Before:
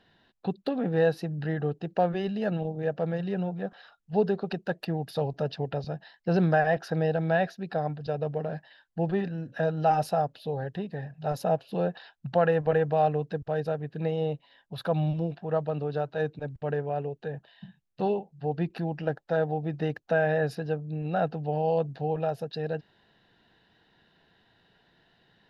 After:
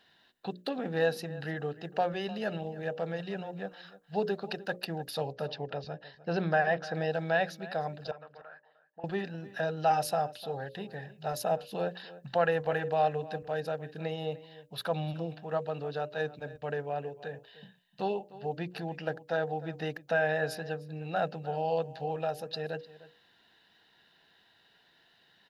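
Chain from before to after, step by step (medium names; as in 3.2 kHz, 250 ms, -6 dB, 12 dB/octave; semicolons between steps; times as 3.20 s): tilt EQ +2.5 dB/octave; hum notches 60/120/180/240/300/360/420/480/540/600 Hz; 5.32–6.95 s: distance through air 110 m; 8.11–9.04 s: auto-wah 340–1400 Hz, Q 3.1, up, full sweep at -33 dBFS; echo from a far wall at 52 m, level -17 dB; trim -1.5 dB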